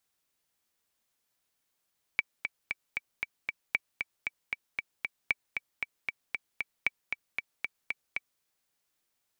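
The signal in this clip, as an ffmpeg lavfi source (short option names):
-f lavfi -i "aevalsrc='pow(10,(-12-6*gte(mod(t,6*60/231),60/231))/20)*sin(2*PI*2300*mod(t,60/231))*exp(-6.91*mod(t,60/231)/0.03)':d=6.23:s=44100"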